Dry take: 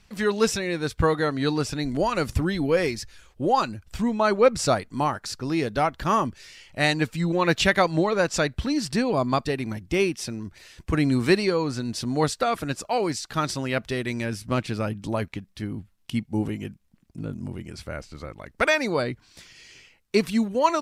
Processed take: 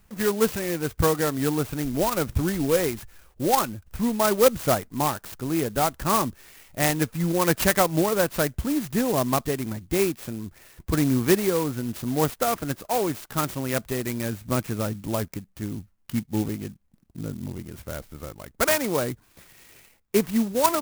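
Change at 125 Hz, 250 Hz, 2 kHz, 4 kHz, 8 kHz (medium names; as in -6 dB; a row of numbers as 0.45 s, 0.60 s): 0.0 dB, 0.0 dB, -3.5 dB, -2.5 dB, +4.5 dB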